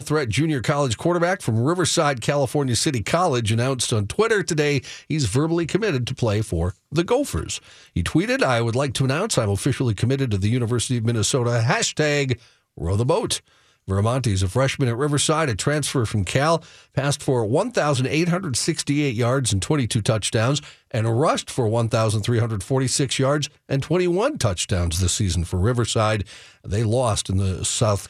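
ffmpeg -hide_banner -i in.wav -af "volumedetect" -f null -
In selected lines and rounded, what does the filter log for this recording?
mean_volume: -21.3 dB
max_volume: -4.8 dB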